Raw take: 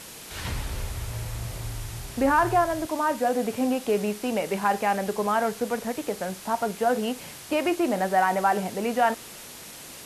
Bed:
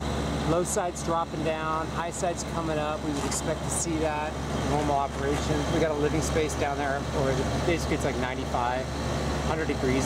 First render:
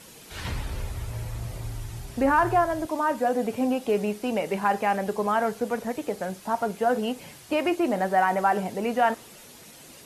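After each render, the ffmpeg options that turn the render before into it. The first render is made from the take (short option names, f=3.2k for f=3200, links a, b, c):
-af "afftdn=nr=8:nf=-43"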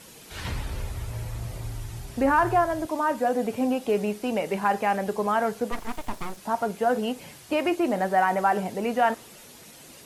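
-filter_complex "[0:a]asplit=3[a][b][c];[a]afade=t=out:st=5.71:d=0.02[d];[b]aeval=exprs='abs(val(0))':c=same,afade=t=in:st=5.71:d=0.02,afade=t=out:st=6.36:d=0.02[e];[c]afade=t=in:st=6.36:d=0.02[f];[d][e][f]amix=inputs=3:normalize=0"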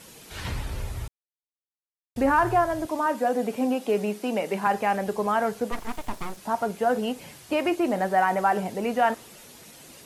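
-filter_complex "[0:a]asettb=1/sr,asplit=3[a][b][c];[a]atrim=end=3.064[d];[b]atrim=start=3.06:end=4.67,asetpts=PTS-STARTPTS,afade=t=in:d=0.004:c=qsin,afade=t=out:st=1.606:d=0.004:c=qsin,highpass=f=160:w=0.5412,highpass=f=160:w=1.3066[e];[c]atrim=start=4.666[f];[d][e]acrossfade=d=0.004:c1=hsin:c2=qsin[g];[g][f]acrossfade=d=0.004:c1=qsin:c2=hsin,asplit=3[h][i][j];[h]atrim=end=1.08,asetpts=PTS-STARTPTS,afade=t=out:st=1.076:d=0.004:c=hsin[k];[i]atrim=start=1.08:end=2.16,asetpts=PTS-STARTPTS,volume=0[l];[j]atrim=start=2.16,asetpts=PTS-STARTPTS,afade=t=in:d=0.004:c=hsin[m];[k][l][m]concat=n=3:v=0:a=1"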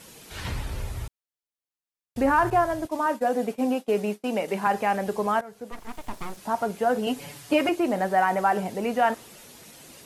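-filter_complex "[0:a]asettb=1/sr,asplit=3[a][b][c];[a]atrim=end=2.504[d];[b]atrim=start=2.5:end=4.48,asetpts=PTS-STARTPTS,afade=t=in:d=0.004:c=qsin,afade=t=out:st=1.976:d=0.004:c=qsin,agate=range=-33dB:threshold=-29dB:ratio=3:release=100:detection=peak[e];[c]atrim=start=4.476[f];[d][e]acrossfade=d=0.004:c1=hsin:c2=qsin[g];[g][f]acrossfade=d=0.004:c1=qsin:c2=hsin,asettb=1/sr,asplit=3[h][i][j];[h]atrim=end=7.064[k];[i]atrim=start=7.06:end=7.69,asetpts=PTS-STARTPTS,afade=t=in:d=0.004:c=qsin,afade=t=out:st=0.626:d=0.004:c=qsin,aecho=1:1:7:1,atrim=end_sample=27783[l];[j]atrim=start=7.686[m];[k][l]acrossfade=d=0.004:c1=hsin:c2=qsin[n];[n][m]acrossfade=d=0.004:c1=qsin:c2=hsin,asplit=2[o][p];[o]atrim=end=5.41,asetpts=PTS-STARTPTS,afade=t=out:st=5.406:d=0.004:c=hsin:silence=0.105925[q];[p]atrim=start=5.41,asetpts=PTS-STARTPTS,afade=t=in:d=1:silence=0.105925[r];[q][r]concat=n=2:v=0:a=1"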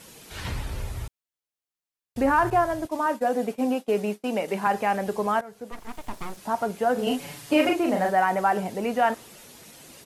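-filter_complex "[0:a]asplit=3[a][b][c];[a]afade=t=out:st=6.97:d=0.02[d];[b]asplit=2[e][f];[f]adelay=39,volume=-3dB[g];[e][g]amix=inputs=2:normalize=0,afade=t=in:st=6.97:d=0.02,afade=t=out:st=8.1:d=0.02[h];[c]afade=t=in:st=8.1:d=0.02[i];[d][h][i]amix=inputs=3:normalize=0"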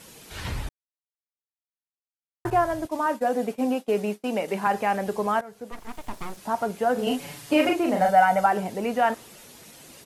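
-filter_complex "[0:a]asettb=1/sr,asplit=3[a][b][c];[a]atrim=end=8.014[d];[b]atrim=start=8.01:end=8.46,asetpts=PTS-STARTPTS,afade=t=in:d=0.004:c=qsin,afade=t=out:st=0.446:d=0.004:c=qsin,aecho=1:1:1.4:0.81,atrim=end_sample=19845[e];[c]atrim=start=8.456[f];[d][e]acrossfade=d=0.004:c1=hsin:c2=qsin[g];[g][f]acrossfade=d=0.004:c1=qsin:c2=hsin,asplit=3[h][i][j];[h]atrim=end=0.69,asetpts=PTS-STARTPTS,afade=t=out:st=0.686:d=0.004:c=hsin[k];[i]atrim=start=0.69:end=2.45,asetpts=PTS-STARTPTS,volume=0[l];[j]atrim=start=2.45,asetpts=PTS-STARTPTS,afade=t=in:d=0.004:c=hsin[m];[k][l][m]concat=n=3:v=0:a=1"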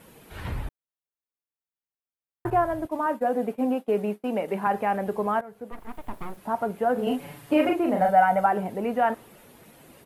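-af "equalizer=f=5.9k:t=o:w=1.8:g=-15"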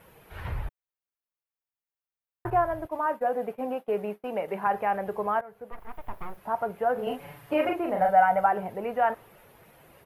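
-af "equalizer=f=250:t=o:w=1:g=-11,equalizer=f=4k:t=o:w=1:g=-5,equalizer=f=8k:t=o:w=1:g=-11"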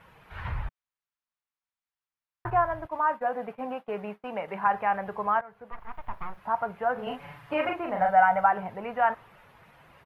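-af "firequalizer=gain_entry='entry(160,0);entry(380,-7);entry(1000,4);entry(12000,-15)':delay=0.05:min_phase=1"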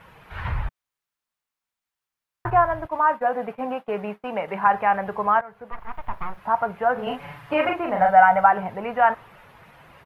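-af "volume=6dB"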